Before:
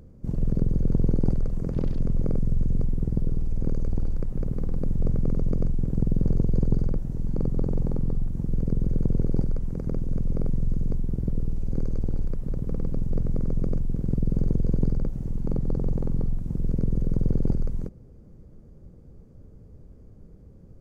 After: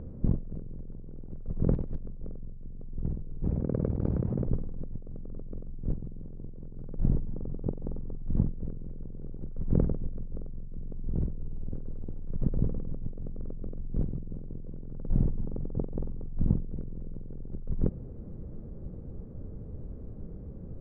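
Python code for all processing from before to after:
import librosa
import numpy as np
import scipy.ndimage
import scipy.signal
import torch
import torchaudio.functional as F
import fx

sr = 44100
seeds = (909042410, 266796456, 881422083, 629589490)

y = fx.chain(x, sr, fx.highpass(hz=100.0, slope=12),
    fx.over_compress(threshold_db=-36.0, ratio=-1.0),
    fx.air_absorb(metres=150.0), at=(3.43, 4.47))
y = scipy.signal.sosfilt(scipy.signal.bessel(2, 1100.0, 'lowpass', norm='mag', fs=sr, output='sos'), y)
y = fx.hum_notches(y, sr, base_hz=50, count=3)
y = fx.over_compress(y, sr, threshold_db=-29.0, ratio=-0.5)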